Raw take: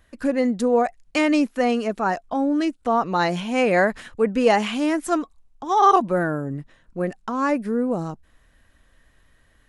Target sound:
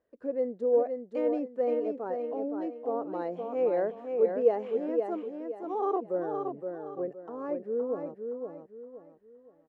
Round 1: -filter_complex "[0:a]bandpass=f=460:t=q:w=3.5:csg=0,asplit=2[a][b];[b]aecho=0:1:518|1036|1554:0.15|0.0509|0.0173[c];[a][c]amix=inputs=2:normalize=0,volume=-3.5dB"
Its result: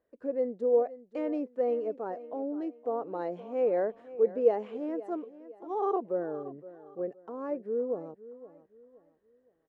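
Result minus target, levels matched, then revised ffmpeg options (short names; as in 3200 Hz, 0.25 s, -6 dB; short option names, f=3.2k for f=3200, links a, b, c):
echo-to-direct -11 dB
-filter_complex "[0:a]bandpass=f=460:t=q:w=3.5:csg=0,asplit=2[a][b];[b]aecho=0:1:518|1036|1554|2072:0.531|0.181|0.0614|0.0209[c];[a][c]amix=inputs=2:normalize=0,volume=-3.5dB"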